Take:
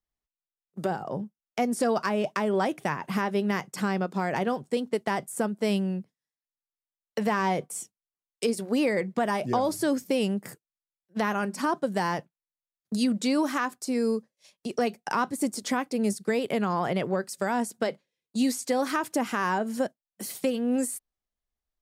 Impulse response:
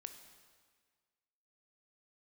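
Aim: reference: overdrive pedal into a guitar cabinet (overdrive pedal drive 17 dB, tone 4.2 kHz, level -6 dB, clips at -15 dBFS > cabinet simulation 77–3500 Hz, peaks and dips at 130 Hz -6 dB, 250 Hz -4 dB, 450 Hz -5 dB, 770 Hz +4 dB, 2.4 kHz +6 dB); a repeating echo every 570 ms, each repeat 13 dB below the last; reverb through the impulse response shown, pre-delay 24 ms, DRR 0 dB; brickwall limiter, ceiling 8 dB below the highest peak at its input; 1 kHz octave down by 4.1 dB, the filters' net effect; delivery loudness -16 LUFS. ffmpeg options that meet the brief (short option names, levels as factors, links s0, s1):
-filter_complex "[0:a]equalizer=f=1000:t=o:g=-8.5,alimiter=limit=0.0708:level=0:latency=1,aecho=1:1:570|1140|1710:0.224|0.0493|0.0108,asplit=2[s0][s1];[1:a]atrim=start_sample=2205,adelay=24[s2];[s1][s2]afir=irnorm=-1:irlink=0,volume=1.68[s3];[s0][s3]amix=inputs=2:normalize=0,asplit=2[s4][s5];[s5]highpass=f=720:p=1,volume=7.08,asoftclip=type=tanh:threshold=0.178[s6];[s4][s6]amix=inputs=2:normalize=0,lowpass=f=4200:p=1,volume=0.501,highpass=77,equalizer=f=130:t=q:w=4:g=-6,equalizer=f=250:t=q:w=4:g=-4,equalizer=f=450:t=q:w=4:g=-5,equalizer=f=770:t=q:w=4:g=4,equalizer=f=2400:t=q:w=4:g=6,lowpass=f=3500:w=0.5412,lowpass=f=3500:w=1.3066,volume=3.98"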